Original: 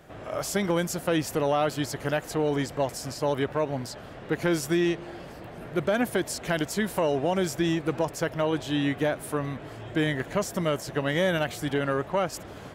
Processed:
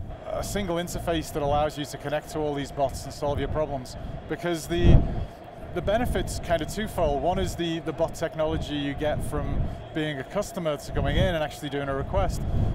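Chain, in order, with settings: wind noise 110 Hz -26 dBFS; small resonant body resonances 680/3300 Hz, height 11 dB, ringing for 35 ms; trim -3.5 dB

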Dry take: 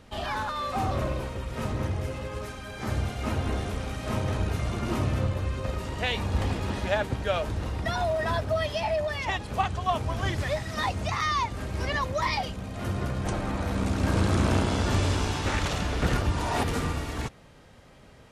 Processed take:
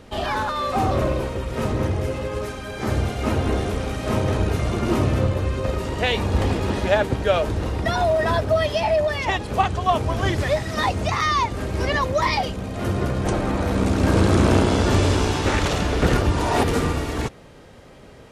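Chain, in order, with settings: peaking EQ 400 Hz +5.5 dB 1.2 oct; trim +5.5 dB

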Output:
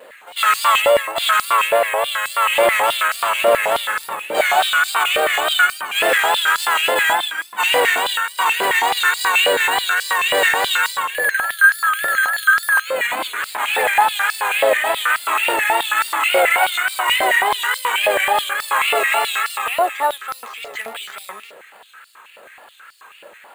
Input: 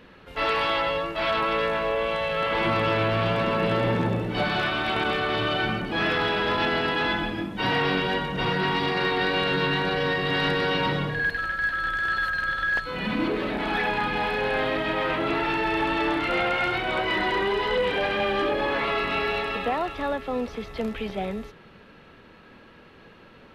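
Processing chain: careless resampling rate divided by 4×, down filtered, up hold; vibrato 3.5 Hz 81 cents; step-sequenced high-pass 9.3 Hz 570–4800 Hz; trim +5.5 dB

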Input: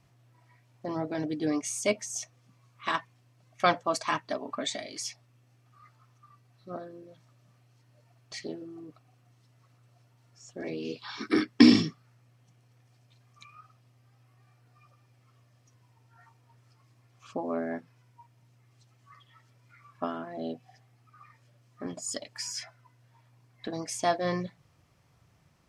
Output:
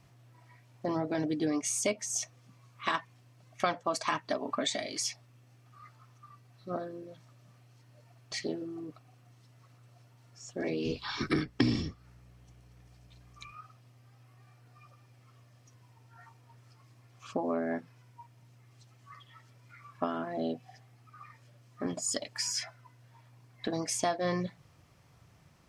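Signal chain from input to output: 10.85–13.52 s: octave divider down 1 oct, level -2 dB; compression 4:1, threshold -31 dBFS, peak gain reduction 17.5 dB; trim +3.5 dB

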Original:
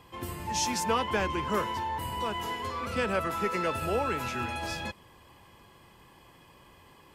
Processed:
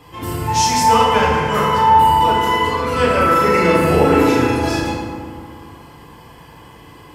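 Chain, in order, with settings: 0.43–1.89 s: peaking EQ 340 Hz -14 dB 0.38 oct; 3.13–4.56 s: doubling 40 ms -3.5 dB; FDN reverb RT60 2 s, low-frequency decay 1.4×, high-frequency decay 0.45×, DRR -6.5 dB; trim +6.5 dB

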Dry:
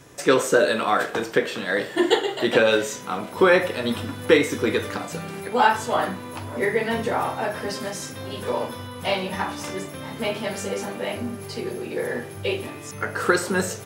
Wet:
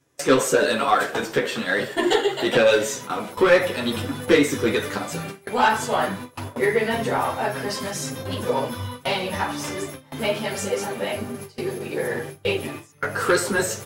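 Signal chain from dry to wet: treble shelf 6.3 kHz +3 dB; saturation -12.5 dBFS, distortion -15 dB; chorus voices 6, 1 Hz, delay 11 ms, depth 3.8 ms; gate with hold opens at -26 dBFS; trim +5 dB

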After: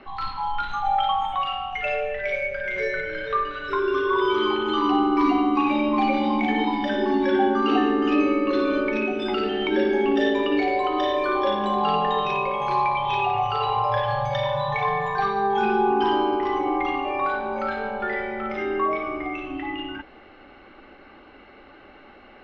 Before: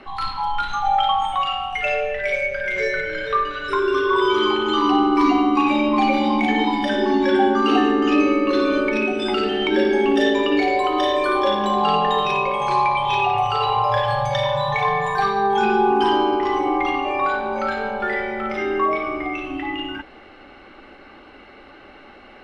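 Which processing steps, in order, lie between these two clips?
distance through air 130 m; trim -3 dB

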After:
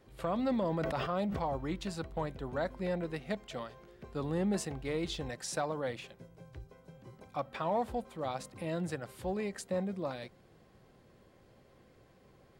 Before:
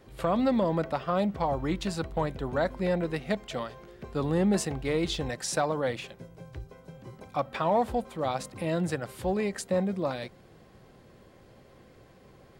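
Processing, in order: 0.43–1.57 s: decay stretcher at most 24 dB/s; trim -7 dB

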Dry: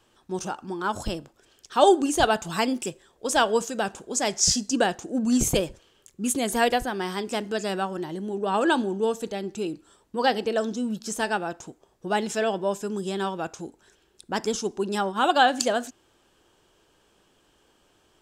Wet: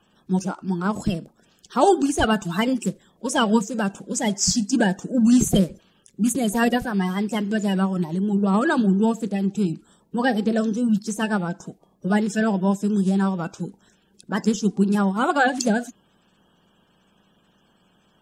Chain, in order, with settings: coarse spectral quantiser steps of 30 dB; peaking EQ 190 Hz +14.5 dB 0.71 oct

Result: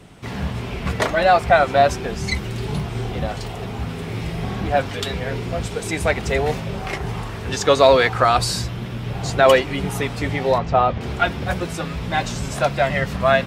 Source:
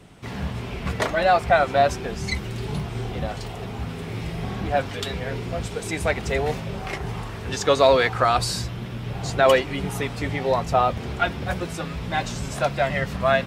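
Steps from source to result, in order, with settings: 10.58–11.01 s: distance through air 170 m; trim +3.5 dB

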